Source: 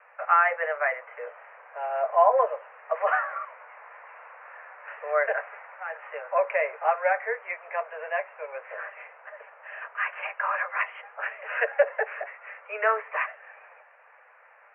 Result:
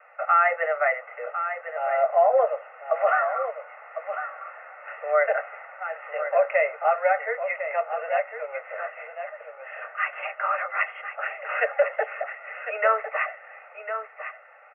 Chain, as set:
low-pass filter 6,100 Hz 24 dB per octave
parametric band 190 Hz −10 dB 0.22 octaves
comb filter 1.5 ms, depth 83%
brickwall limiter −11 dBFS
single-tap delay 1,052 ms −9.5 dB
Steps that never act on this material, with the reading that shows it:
low-pass filter 6,100 Hz: nothing at its input above 2,700 Hz
parametric band 190 Hz: nothing at its input below 380 Hz

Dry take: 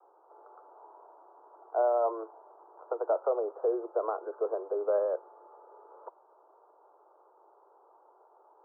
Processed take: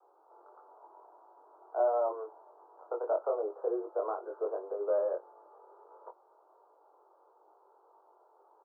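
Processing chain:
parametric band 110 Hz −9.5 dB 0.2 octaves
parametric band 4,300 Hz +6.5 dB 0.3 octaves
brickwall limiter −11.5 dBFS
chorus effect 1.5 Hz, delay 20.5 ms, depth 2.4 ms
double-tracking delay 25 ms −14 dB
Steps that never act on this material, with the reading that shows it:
parametric band 110 Hz: nothing at its input below 300 Hz
parametric band 4,300 Hz: nothing at its input above 1,400 Hz
brickwall limiter −11.5 dBFS: peak of its input −17.5 dBFS

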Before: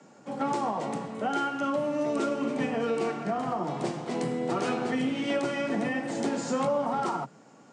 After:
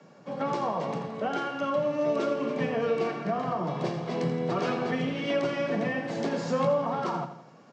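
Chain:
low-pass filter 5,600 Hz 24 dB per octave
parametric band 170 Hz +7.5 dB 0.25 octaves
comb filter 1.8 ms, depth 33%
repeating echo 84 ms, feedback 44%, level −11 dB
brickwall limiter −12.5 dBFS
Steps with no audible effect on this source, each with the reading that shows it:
brickwall limiter −12.5 dBFS: peak of its input −15.0 dBFS

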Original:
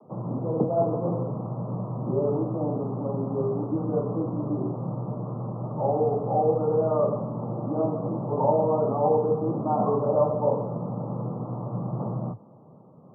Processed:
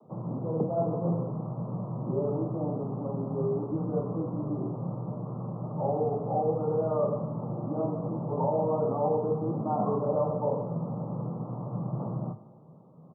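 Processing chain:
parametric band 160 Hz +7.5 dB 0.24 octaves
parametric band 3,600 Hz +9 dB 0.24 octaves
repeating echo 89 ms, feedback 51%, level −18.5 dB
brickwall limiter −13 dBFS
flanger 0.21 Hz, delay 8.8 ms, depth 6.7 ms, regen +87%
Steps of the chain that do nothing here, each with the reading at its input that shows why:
parametric band 3,600 Hz: nothing at its input above 1,300 Hz

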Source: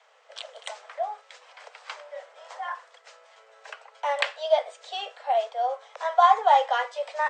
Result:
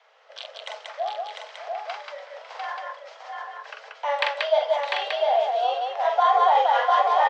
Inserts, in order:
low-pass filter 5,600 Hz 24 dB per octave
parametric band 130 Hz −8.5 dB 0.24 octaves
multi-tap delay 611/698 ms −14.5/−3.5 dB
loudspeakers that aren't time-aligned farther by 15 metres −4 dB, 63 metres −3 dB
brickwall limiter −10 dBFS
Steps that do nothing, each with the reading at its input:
parametric band 130 Hz: nothing at its input below 430 Hz

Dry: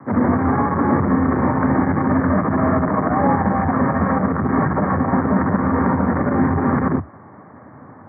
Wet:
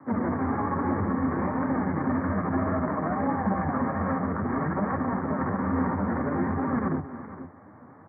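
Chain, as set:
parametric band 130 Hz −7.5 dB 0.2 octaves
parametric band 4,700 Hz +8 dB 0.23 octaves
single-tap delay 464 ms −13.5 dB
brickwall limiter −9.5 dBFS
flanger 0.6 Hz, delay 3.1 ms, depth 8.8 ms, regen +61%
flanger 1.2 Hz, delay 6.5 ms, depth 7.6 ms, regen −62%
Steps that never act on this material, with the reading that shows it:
parametric band 4,700 Hz: nothing at its input above 1,900 Hz

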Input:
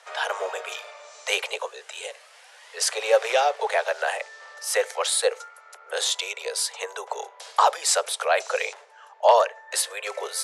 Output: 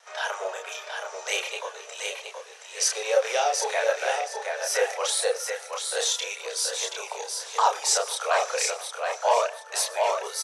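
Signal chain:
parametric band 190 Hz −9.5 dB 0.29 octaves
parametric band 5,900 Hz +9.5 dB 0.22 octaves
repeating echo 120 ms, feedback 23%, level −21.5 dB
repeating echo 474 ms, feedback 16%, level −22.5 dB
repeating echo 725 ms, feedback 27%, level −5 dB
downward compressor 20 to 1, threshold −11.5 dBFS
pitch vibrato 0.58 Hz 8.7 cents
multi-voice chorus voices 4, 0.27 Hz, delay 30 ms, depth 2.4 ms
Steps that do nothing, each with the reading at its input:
parametric band 190 Hz: nothing at its input below 360 Hz

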